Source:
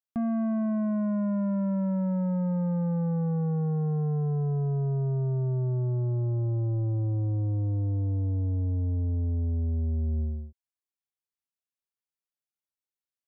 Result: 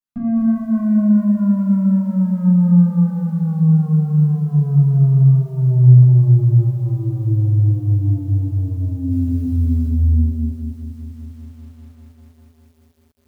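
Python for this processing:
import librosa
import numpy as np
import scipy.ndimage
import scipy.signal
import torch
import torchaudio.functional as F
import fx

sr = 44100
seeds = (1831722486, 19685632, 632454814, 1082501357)

p1 = fx.graphic_eq(x, sr, hz=(125, 250, 500), db=(5, 9, -11))
p2 = fx.quant_dither(p1, sr, seeds[0], bits=10, dither='triangular', at=(9.1, 9.88))
p3 = p2 + fx.echo_feedback(p2, sr, ms=238, feedback_pct=35, wet_db=-6.0, dry=0)
p4 = fx.room_shoebox(p3, sr, seeds[1], volume_m3=450.0, walls='furnished', distance_m=6.8)
p5 = fx.echo_crushed(p4, sr, ms=199, feedback_pct=80, bits=7, wet_db=-14)
y = p5 * 10.0 ** (-7.5 / 20.0)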